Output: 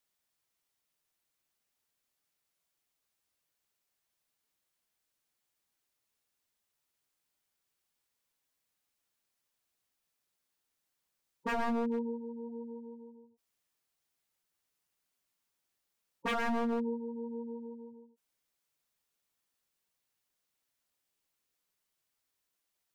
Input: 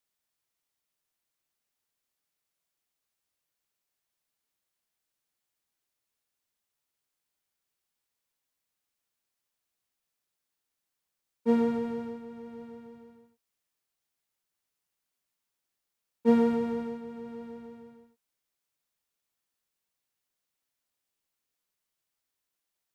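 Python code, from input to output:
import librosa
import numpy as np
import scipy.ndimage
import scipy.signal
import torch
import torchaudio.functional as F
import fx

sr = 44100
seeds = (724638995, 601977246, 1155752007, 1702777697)

y = fx.spec_gate(x, sr, threshold_db=-15, keep='strong')
y = 10.0 ** (-28.5 / 20.0) * (np.abs((y / 10.0 ** (-28.5 / 20.0) + 3.0) % 4.0 - 2.0) - 1.0)
y = F.gain(torch.from_numpy(y), 1.5).numpy()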